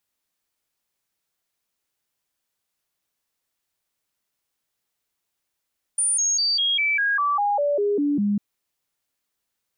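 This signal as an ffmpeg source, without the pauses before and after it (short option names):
-f lavfi -i "aevalsrc='0.119*clip(min(mod(t,0.2),0.2-mod(t,0.2))/0.005,0,1)*sin(2*PI*9260*pow(2,-floor(t/0.2)/2)*mod(t,0.2))':d=2.4:s=44100"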